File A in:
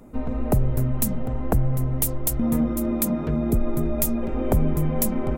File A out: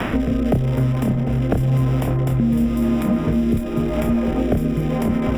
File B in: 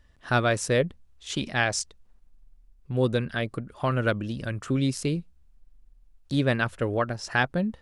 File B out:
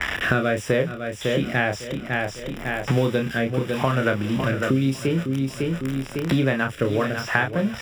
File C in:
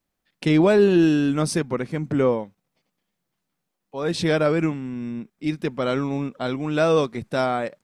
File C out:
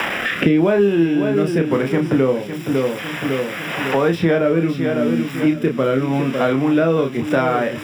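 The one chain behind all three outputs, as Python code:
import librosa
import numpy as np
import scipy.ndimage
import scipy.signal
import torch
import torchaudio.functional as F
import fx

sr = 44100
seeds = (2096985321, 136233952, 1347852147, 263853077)

p1 = x + 0.5 * 10.0 ** (-20.0 / 20.0) * np.diff(np.sign(x), prepend=np.sign(x[:1]))
p2 = fx.highpass(p1, sr, hz=91.0, slope=6)
p3 = fx.rotary(p2, sr, hz=0.9)
p4 = scipy.signal.savgol_filter(p3, 25, 4, mode='constant')
p5 = fx.doubler(p4, sr, ms=30.0, db=-5.5)
p6 = p5 + fx.echo_feedback(p5, sr, ms=553, feedback_pct=28, wet_db=-11.5, dry=0)
p7 = fx.band_squash(p6, sr, depth_pct=100)
y = p7 * librosa.db_to_amplitude(5.0)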